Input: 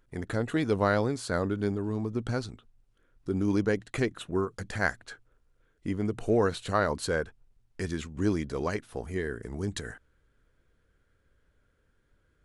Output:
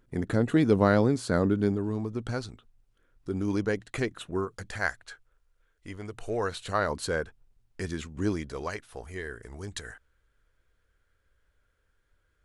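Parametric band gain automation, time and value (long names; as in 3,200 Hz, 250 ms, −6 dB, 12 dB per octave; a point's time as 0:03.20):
parametric band 210 Hz 2.3 octaves
0:01.49 +7 dB
0:02.16 −2.5 dB
0:04.46 −2.5 dB
0:05.06 −13.5 dB
0:06.19 −13.5 dB
0:06.97 −1.5 dB
0:08.27 −1.5 dB
0:08.73 −10.5 dB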